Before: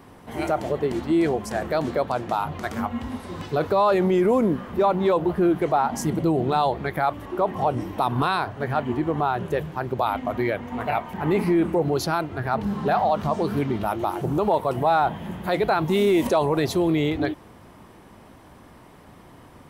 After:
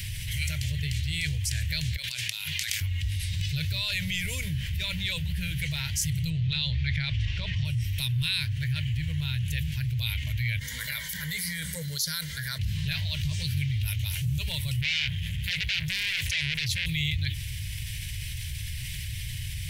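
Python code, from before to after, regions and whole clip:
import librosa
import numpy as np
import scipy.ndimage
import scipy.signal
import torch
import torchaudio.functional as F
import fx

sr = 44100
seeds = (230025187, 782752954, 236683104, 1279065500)

y = fx.chain(x, sr, fx.highpass(hz=1200.0, slope=6),
    fx.over_compress(threshold_db=-40.0, ratio=-1.0), at=(1.96, 2.81))
y = fx.chain(y, sr, fx.lowpass(hz=5600.0, slope=24),
    fx.env_flatten(amount_pct=50), at=(6.3, 7.65))
y = fx.chain(y, sr, fx.highpass(hz=400.0, slope=6),
    fx.fixed_phaser(hz=520.0, stages=8), at=(10.59, 12.59))
y = fx.chain(y, sr, fx.high_shelf(hz=7800.0, db=-7.0),
    fx.transformer_sat(knee_hz=1700.0), at=(14.81, 16.86))
y = scipy.signal.sosfilt(scipy.signal.cheby2(4, 40, [210.0, 1300.0], 'bandstop', fs=sr, output='sos'), y)
y = fx.dynamic_eq(y, sr, hz=110.0, q=0.76, threshold_db=-46.0, ratio=4.0, max_db=4)
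y = fx.env_flatten(y, sr, amount_pct=70)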